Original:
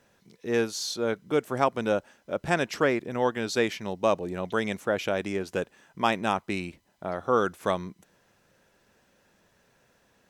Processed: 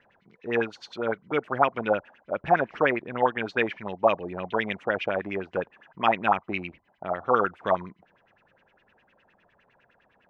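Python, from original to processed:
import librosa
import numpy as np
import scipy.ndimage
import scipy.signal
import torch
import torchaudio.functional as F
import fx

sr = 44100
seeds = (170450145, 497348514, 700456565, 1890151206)

y = fx.filter_lfo_lowpass(x, sr, shape='sine', hz=9.8, low_hz=690.0, high_hz=2900.0, q=5.3)
y = y * 10.0 ** (-3.0 / 20.0)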